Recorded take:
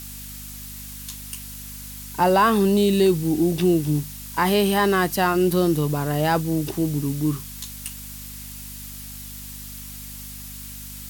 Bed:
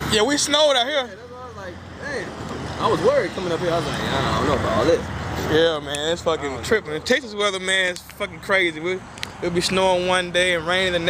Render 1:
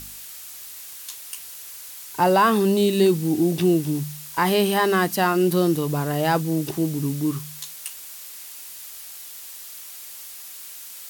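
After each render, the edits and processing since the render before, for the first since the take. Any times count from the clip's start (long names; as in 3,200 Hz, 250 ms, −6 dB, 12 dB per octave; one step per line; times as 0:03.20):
hum removal 50 Hz, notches 5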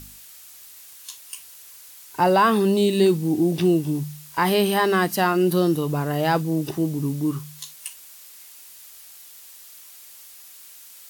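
noise reduction from a noise print 6 dB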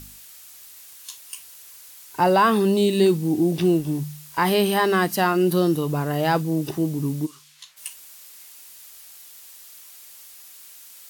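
0:03.58–0:03.99: mu-law and A-law mismatch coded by A
0:07.25–0:07.76: resonant band-pass 6,400 Hz → 1,400 Hz, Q 0.84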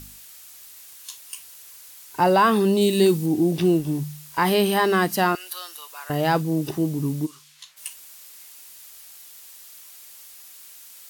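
0:02.81–0:03.26: high-shelf EQ 5,400 Hz +6 dB
0:05.35–0:06.10: Bessel high-pass filter 1,500 Hz, order 4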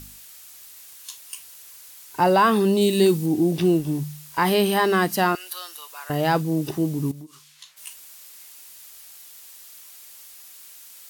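0:07.11–0:07.87: downward compressor 12 to 1, threshold −36 dBFS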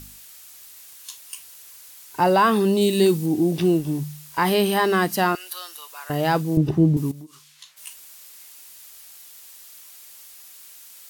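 0:06.57–0:06.97: RIAA equalisation playback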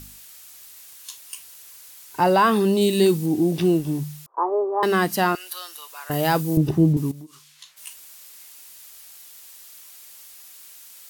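0:04.26–0:04.83: Chebyshev band-pass filter 350–1,200 Hz, order 4
0:06.11–0:06.93: high-shelf EQ 7,600 Hz +11 dB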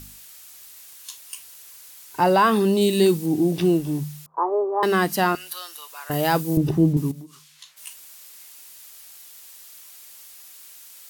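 hum removal 78.58 Hz, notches 3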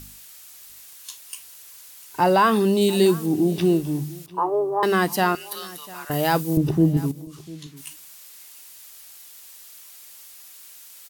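single-tap delay 698 ms −20.5 dB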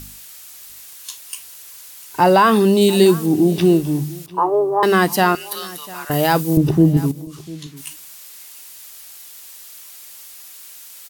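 level +5.5 dB
brickwall limiter −3 dBFS, peak gain reduction 2 dB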